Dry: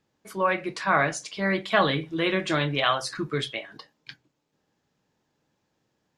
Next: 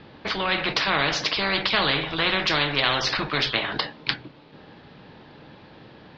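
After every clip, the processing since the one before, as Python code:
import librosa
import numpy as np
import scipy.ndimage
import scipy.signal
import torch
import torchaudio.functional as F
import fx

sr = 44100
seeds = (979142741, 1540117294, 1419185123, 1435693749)

y = scipy.signal.sosfilt(scipy.signal.butter(8, 4400.0, 'lowpass', fs=sr, output='sos'), x)
y = fx.spectral_comp(y, sr, ratio=4.0)
y = y * librosa.db_to_amplitude(5.5)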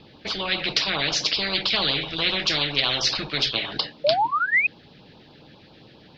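y = fx.spec_paint(x, sr, seeds[0], shape='rise', start_s=4.04, length_s=0.63, low_hz=550.0, high_hz=2600.0, level_db=-16.0)
y = fx.high_shelf(y, sr, hz=3000.0, db=10.0)
y = fx.filter_lfo_notch(y, sr, shape='sine', hz=7.4, low_hz=920.0, high_hz=2000.0, q=0.97)
y = y * librosa.db_to_amplitude(-2.5)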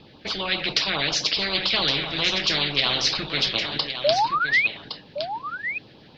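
y = x + 10.0 ** (-9.0 / 20.0) * np.pad(x, (int(1114 * sr / 1000.0), 0))[:len(x)]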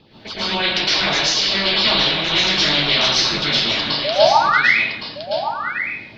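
y = fx.rev_plate(x, sr, seeds[1], rt60_s=0.66, hf_ratio=0.9, predelay_ms=100, drr_db=-9.5)
y = y * librosa.db_to_amplitude(-3.0)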